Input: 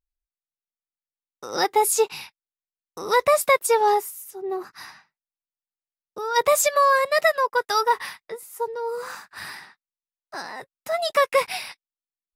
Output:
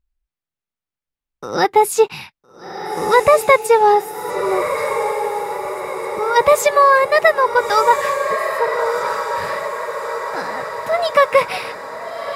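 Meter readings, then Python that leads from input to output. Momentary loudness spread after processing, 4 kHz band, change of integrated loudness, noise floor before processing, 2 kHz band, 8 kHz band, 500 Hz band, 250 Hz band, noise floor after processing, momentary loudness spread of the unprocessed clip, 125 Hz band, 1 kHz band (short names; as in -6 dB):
13 LU, +2.5 dB, +5.0 dB, under -85 dBFS, +7.0 dB, -1.0 dB, +8.0 dB, +9.5 dB, under -85 dBFS, 19 LU, n/a, +7.5 dB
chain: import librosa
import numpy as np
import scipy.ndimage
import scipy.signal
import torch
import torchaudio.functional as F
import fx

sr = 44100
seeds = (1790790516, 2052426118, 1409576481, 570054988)

y = fx.bass_treble(x, sr, bass_db=8, treble_db=-9)
y = fx.echo_diffused(y, sr, ms=1370, feedback_pct=58, wet_db=-7.5)
y = F.gain(torch.from_numpy(y), 6.5).numpy()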